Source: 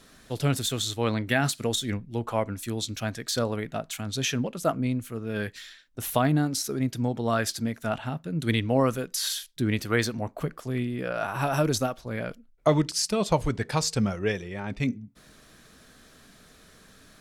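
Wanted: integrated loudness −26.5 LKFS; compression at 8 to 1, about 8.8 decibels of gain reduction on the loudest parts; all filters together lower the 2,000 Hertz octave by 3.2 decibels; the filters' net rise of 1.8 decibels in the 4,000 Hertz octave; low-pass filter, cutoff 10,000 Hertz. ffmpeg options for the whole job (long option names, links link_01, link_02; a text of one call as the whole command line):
ffmpeg -i in.wav -af "lowpass=10000,equalizer=frequency=2000:width_type=o:gain=-5,equalizer=frequency=4000:width_type=o:gain=3.5,acompressor=threshold=-26dB:ratio=8,volume=5.5dB" out.wav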